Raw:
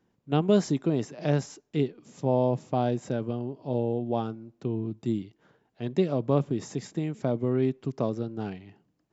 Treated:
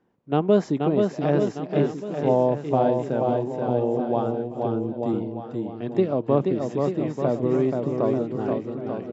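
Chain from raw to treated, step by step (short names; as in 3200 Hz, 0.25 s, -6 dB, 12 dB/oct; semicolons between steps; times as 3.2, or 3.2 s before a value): LPF 1000 Hz 6 dB/oct; low shelf 240 Hz -12 dB; bouncing-ball echo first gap 0.48 s, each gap 0.85×, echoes 5; gain +8 dB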